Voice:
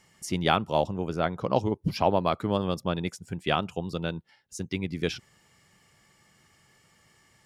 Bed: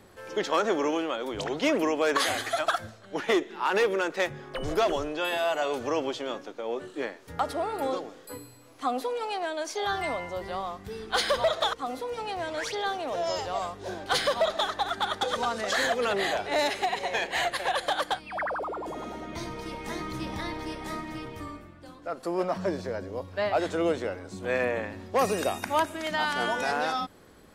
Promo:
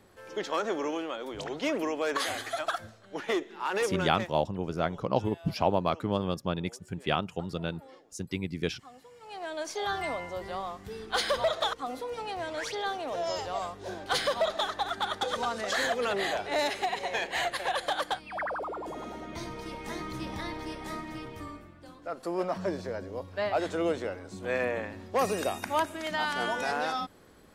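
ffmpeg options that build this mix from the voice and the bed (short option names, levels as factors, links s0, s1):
-filter_complex "[0:a]adelay=3600,volume=0.75[s0];[1:a]volume=5.96,afade=t=out:st=4:d=0.4:silence=0.125893,afade=t=in:st=9.2:d=0.41:silence=0.0944061[s1];[s0][s1]amix=inputs=2:normalize=0"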